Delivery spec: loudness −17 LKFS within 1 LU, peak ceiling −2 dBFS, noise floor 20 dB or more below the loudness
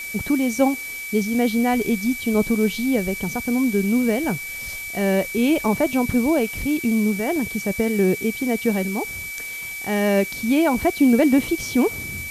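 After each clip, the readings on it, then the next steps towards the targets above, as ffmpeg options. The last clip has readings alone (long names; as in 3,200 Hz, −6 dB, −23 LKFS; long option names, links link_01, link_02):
interfering tone 2,300 Hz; level of the tone −30 dBFS; background noise floor −32 dBFS; target noise floor −41 dBFS; integrated loudness −21.0 LKFS; sample peak −5.0 dBFS; target loudness −17.0 LKFS
→ -af "bandreject=frequency=2300:width=30"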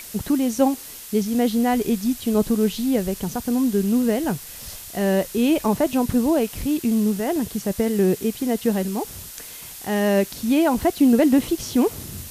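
interfering tone none found; background noise floor −39 dBFS; target noise floor −42 dBFS
→ -af "afftdn=noise_reduction=6:noise_floor=-39"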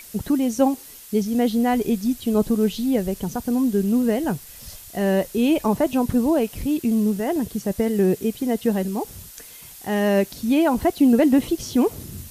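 background noise floor −43 dBFS; integrated loudness −21.5 LKFS; sample peak −5.5 dBFS; target loudness −17.0 LKFS
→ -af "volume=4.5dB,alimiter=limit=-2dB:level=0:latency=1"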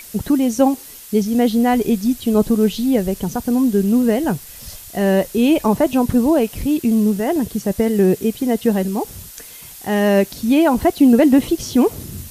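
integrated loudness −17.0 LKFS; sample peak −2.0 dBFS; background noise floor −38 dBFS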